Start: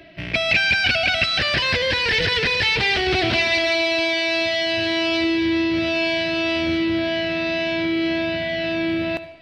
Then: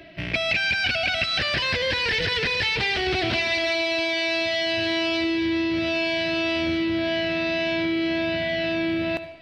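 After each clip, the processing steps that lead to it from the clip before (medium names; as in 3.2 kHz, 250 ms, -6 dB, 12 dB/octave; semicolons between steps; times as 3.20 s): compression 3:1, threshold -22 dBFS, peak gain reduction 6.5 dB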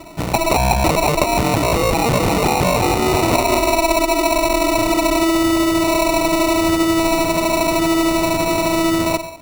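sample-and-hold 27×; Chebyshev shaper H 8 -23 dB, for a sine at -11 dBFS; trim +8 dB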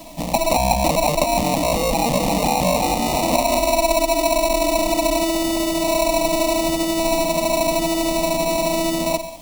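added noise pink -42 dBFS; static phaser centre 390 Hz, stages 6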